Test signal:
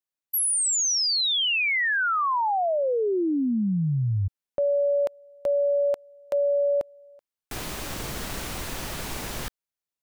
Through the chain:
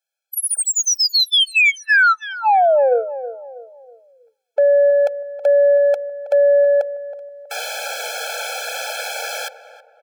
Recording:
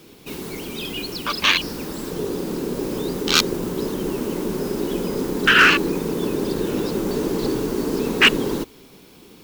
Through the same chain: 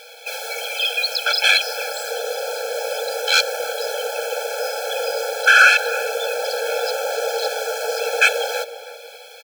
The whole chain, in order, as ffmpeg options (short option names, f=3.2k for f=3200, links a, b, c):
-filter_complex "[0:a]bandreject=f=172.9:t=h:w=4,bandreject=f=345.8:t=h:w=4,bandreject=f=518.7:t=h:w=4,asplit=2[a][b];[b]highpass=f=720:p=1,volume=20dB,asoftclip=type=tanh:threshold=-4dB[c];[a][c]amix=inputs=2:normalize=0,lowpass=f=4.3k:p=1,volume=-6dB,asplit=2[d][e];[e]adelay=322,lowpass=f=980:p=1,volume=-11.5dB,asplit=2[f][g];[g]adelay=322,lowpass=f=980:p=1,volume=0.44,asplit=2[h][i];[i]adelay=322,lowpass=f=980:p=1,volume=0.44,asplit=2[j][k];[k]adelay=322,lowpass=f=980:p=1,volume=0.44[l];[f][h][j][l]amix=inputs=4:normalize=0[m];[d][m]amix=inputs=2:normalize=0,afftfilt=real='re*eq(mod(floor(b*sr/1024/440),2),1)':imag='im*eq(mod(floor(b*sr/1024/440),2),1)':win_size=1024:overlap=0.75,volume=1dB"